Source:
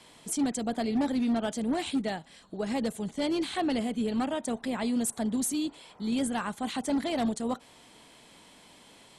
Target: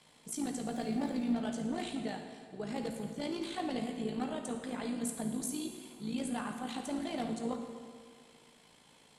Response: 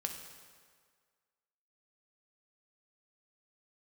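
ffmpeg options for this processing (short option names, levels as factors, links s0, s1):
-filter_complex "[0:a]asettb=1/sr,asplit=3[s0][s1][s2];[s0]atrim=end=0.654[s3];[s1]atrim=start=0.65:end=1.32,asetpts=PTS-STARTPTS,afade=t=in:d=0.004:c=qsin,afade=t=out:st=0.666:d=0.004:c=qsin,aeval=exprs='val(0)+0.5*0.00531*sgn(val(0))':c=same[s4];[s2]atrim=start=1.316[s5];[s3][s4]acrossfade=d=0.004:c1=hsin:c2=qsin[s6];[s6][s5]acrossfade=d=0.004:c1=qsin:c2=hsin,tremolo=f=55:d=0.667[s7];[1:a]atrim=start_sample=2205,asetrate=39249,aresample=44100[s8];[s7][s8]afir=irnorm=-1:irlink=0,volume=0.562"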